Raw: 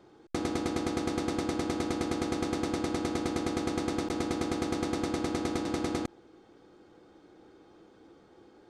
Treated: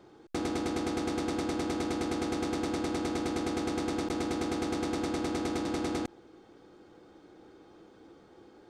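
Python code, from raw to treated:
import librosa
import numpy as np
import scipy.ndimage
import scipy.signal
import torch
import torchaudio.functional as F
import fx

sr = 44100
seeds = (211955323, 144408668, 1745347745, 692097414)

y = 10.0 ** (-26.0 / 20.0) * np.tanh(x / 10.0 ** (-26.0 / 20.0))
y = y * librosa.db_to_amplitude(1.5)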